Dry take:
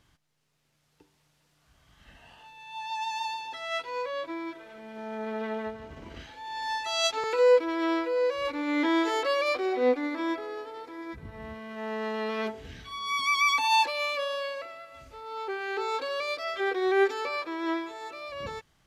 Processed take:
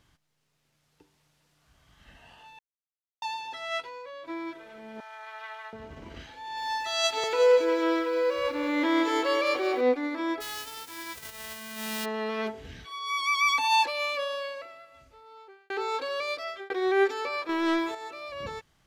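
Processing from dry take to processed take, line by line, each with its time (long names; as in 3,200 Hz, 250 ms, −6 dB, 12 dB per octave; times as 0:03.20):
0:02.59–0:03.22: silence
0:03.80–0:04.28: downward compressor 12 to 1, threshold −38 dBFS
0:05.00–0:05.73: high-pass filter 920 Hz 24 dB per octave
0:06.39–0:09.81: feedback echo at a low word length 183 ms, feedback 55%, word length 9 bits, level −8 dB
0:10.40–0:12.04: spectral envelope flattened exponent 0.1
0:12.85–0:13.43: elliptic high-pass filter 320 Hz
0:14.20–0:15.70: fade out
0:16.27–0:16.70: fade out equal-power
0:17.49–0:17.95: leveller curve on the samples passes 2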